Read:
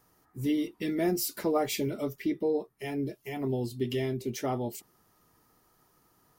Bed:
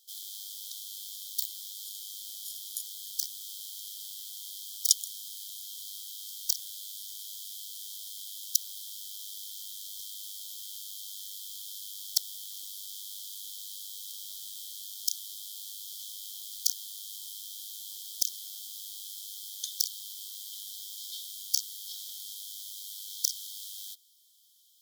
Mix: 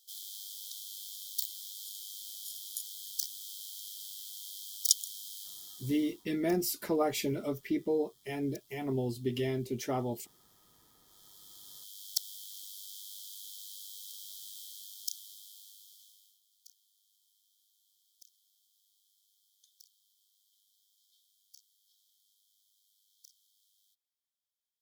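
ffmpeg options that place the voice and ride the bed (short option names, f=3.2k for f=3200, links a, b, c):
-filter_complex "[0:a]adelay=5450,volume=-2dB[a];[1:a]volume=17.5dB,afade=t=out:st=5.37:d=0.88:silence=0.0794328,afade=t=in:st=11.04:d=1.2:silence=0.1,afade=t=out:st=14.58:d=1.82:silence=0.0530884[b];[a][b]amix=inputs=2:normalize=0"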